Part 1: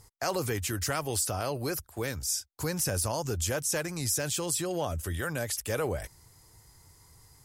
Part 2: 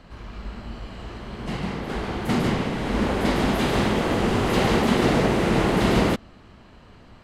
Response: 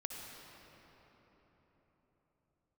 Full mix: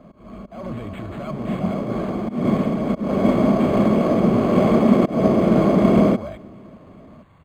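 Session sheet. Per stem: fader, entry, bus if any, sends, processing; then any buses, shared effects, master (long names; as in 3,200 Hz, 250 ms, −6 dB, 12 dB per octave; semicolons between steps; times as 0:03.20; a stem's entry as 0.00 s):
0.0 dB, 0.30 s, no send, brickwall limiter −25.5 dBFS, peak gain reduction 9.5 dB; soft clipping −37.5 dBFS, distortion −9 dB
−11.0 dB, 0.00 s, send −23 dB, parametric band 410 Hz +10 dB 1.3 octaves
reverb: on, RT60 4.5 s, pre-delay 53 ms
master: volume swells 205 ms; hollow resonant body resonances 200/620/1,100/2,200 Hz, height 16 dB, ringing for 25 ms; linearly interpolated sample-rate reduction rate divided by 8×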